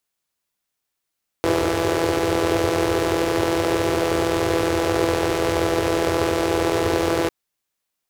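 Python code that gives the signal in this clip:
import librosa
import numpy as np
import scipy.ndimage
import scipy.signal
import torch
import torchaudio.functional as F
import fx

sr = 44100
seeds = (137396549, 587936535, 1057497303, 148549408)

y = fx.engine_four(sr, seeds[0], length_s=5.85, rpm=5000, resonances_hz=(95.0, 390.0))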